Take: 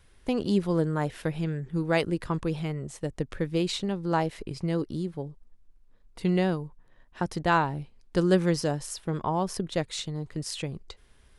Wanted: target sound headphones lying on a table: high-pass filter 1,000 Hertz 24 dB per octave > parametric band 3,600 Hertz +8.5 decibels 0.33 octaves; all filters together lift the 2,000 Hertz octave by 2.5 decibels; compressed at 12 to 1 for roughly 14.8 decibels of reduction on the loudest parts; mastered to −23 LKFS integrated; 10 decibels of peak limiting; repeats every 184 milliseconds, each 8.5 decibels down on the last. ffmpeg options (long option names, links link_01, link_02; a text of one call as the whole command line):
ffmpeg -i in.wav -af "equalizer=frequency=2000:width_type=o:gain=3,acompressor=threshold=-31dB:ratio=12,alimiter=level_in=3.5dB:limit=-24dB:level=0:latency=1,volume=-3.5dB,highpass=frequency=1000:width=0.5412,highpass=frequency=1000:width=1.3066,equalizer=frequency=3600:width_type=o:width=0.33:gain=8.5,aecho=1:1:184|368|552|736:0.376|0.143|0.0543|0.0206,volume=18.5dB" out.wav